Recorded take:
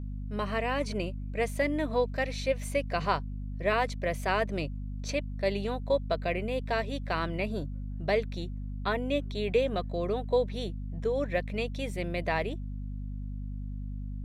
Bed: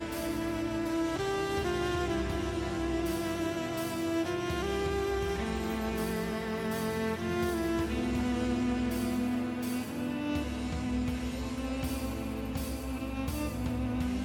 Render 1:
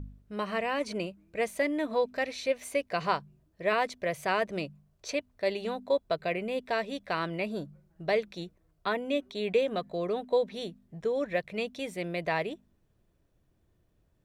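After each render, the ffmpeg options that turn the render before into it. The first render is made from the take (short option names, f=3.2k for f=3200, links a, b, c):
-af "bandreject=f=50:t=h:w=4,bandreject=f=100:t=h:w=4,bandreject=f=150:t=h:w=4,bandreject=f=200:t=h:w=4,bandreject=f=250:t=h:w=4"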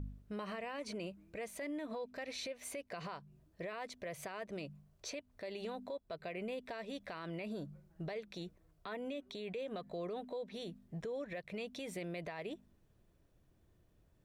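-af "acompressor=threshold=-35dB:ratio=6,alimiter=level_in=10.5dB:limit=-24dB:level=0:latency=1:release=43,volume=-10.5dB"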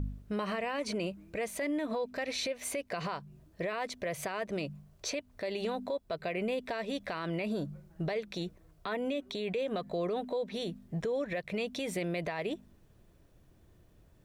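-af "volume=8.5dB"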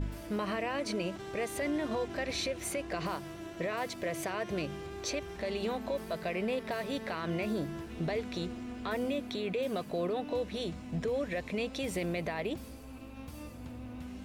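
-filter_complex "[1:a]volume=-11.5dB[a];[0:a][a]amix=inputs=2:normalize=0"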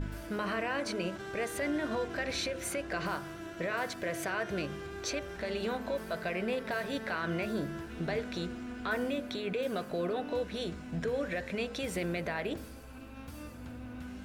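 -af "equalizer=f=1.5k:w=4.3:g=9.5,bandreject=f=52.86:t=h:w=4,bandreject=f=105.72:t=h:w=4,bandreject=f=158.58:t=h:w=4,bandreject=f=211.44:t=h:w=4,bandreject=f=264.3:t=h:w=4,bandreject=f=317.16:t=h:w=4,bandreject=f=370.02:t=h:w=4,bandreject=f=422.88:t=h:w=4,bandreject=f=475.74:t=h:w=4,bandreject=f=528.6:t=h:w=4,bandreject=f=581.46:t=h:w=4,bandreject=f=634.32:t=h:w=4,bandreject=f=687.18:t=h:w=4,bandreject=f=740.04:t=h:w=4,bandreject=f=792.9:t=h:w=4,bandreject=f=845.76:t=h:w=4,bandreject=f=898.62:t=h:w=4,bandreject=f=951.48:t=h:w=4,bandreject=f=1.00434k:t=h:w=4,bandreject=f=1.0572k:t=h:w=4,bandreject=f=1.11006k:t=h:w=4,bandreject=f=1.16292k:t=h:w=4,bandreject=f=1.21578k:t=h:w=4,bandreject=f=1.26864k:t=h:w=4,bandreject=f=1.3215k:t=h:w=4,bandreject=f=1.37436k:t=h:w=4,bandreject=f=1.42722k:t=h:w=4,bandreject=f=1.48008k:t=h:w=4,bandreject=f=1.53294k:t=h:w=4,bandreject=f=1.5858k:t=h:w=4,bandreject=f=1.63866k:t=h:w=4,bandreject=f=1.69152k:t=h:w=4,bandreject=f=1.74438k:t=h:w=4,bandreject=f=1.79724k:t=h:w=4,bandreject=f=1.8501k:t=h:w=4,bandreject=f=1.90296k:t=h:w=4,bandreject=f=1.95582k:t=h:w=4"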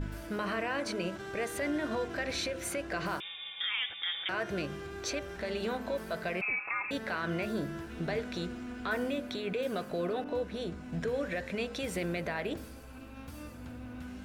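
-filter_complex "[0:a]asettb=1/sr,asplit=3[a][b][c];[a]atrim=end=3.204[d];[b]atrim=start=3.2:end=4.29,asetpts=PTS-STARTPTS,afade=t=in:d=0.004:c=qsin,afade=t=out:st=1.086:d=0.004:c=qsin,lowpass=f=3.2k:t=q:w=0.5098,lowpass=f=3.2k:t=q:w=0.6013,lowpass=f=3.2k:t=q:w=0.9,lowpass=f=3.2k:t=q:w=2.563,afreqshift=-3800[e];[c]atrim=start=4.286[f];[d][e]acrossfade=d=0.004:c1=hsin:c2=qsin[g];[g][f]acrossfade=d=0.004:c1=qsin:c2=hsin,asettb=1/sr,asplit=3[h][i][j];[h]atrim=end=6.414[k];[i]atrim=start=6.41:end=6.91,asetpts=PTS-STARTPTS,afade=t=in:d=0.004:c=qsin,afade=t=out:st=0.496:d=0.004:c=qsin,lowpass=f=2.4k:t=q:w=0.5098,lowpass=f=2.4k:t=q:w=0.6013,lowpass=f=2.4k:t=q:w=0.9,lowpass=f=2.4k:t=q:w=2.563,afreqshift=-2800[l];[j]atrim=start=6.906[m];[k][l]acrossfade=d=0.004:c1=hsin:c2=qsin[n];[n][m]acrossfade=d=0.004:c1=qsin:c2=hsin,asettb=1/sr,asplit=3[o][p][q];[o]atrim=end=10.244[r];[p]atrim=start=10.24:end=10.93,asetpts=PTS-STARTPTS,afade=t=in:d=0.004:c=qsin,afade=t=out:st=0.686:d=0.004:c=qsin,adynamicequalizer=threshold=0.00251:dfrequency=1700:dqfactor=0.7:tfrequency=1700:tqfactor=0.7:attack=5:release=100:ratio=0.375:range=2.5:mode=cutabove:tftype=highshelf[s];[q]atrim=start=10.926[t];[r][s]acrossfade=d=0.004:c1=hsin:c2=qsin[u];[u][t]acrossfade=d=0.004:c1=qsin:c2=hsin"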